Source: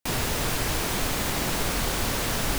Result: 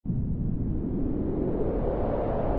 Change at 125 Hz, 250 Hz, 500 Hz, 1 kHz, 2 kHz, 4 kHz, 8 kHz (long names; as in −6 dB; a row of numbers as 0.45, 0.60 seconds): +2.0 dB, +4.0 dB, +3.0 dB, −6.5 dB, below −20 dB, below −30 dB, below −40 dB